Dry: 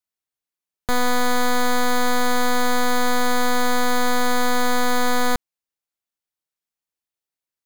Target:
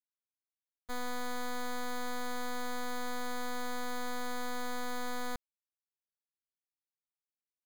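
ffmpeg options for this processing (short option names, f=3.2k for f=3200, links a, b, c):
-af "agate=range=-33dB:threshold=-8dB:ratio=3:detection=peak"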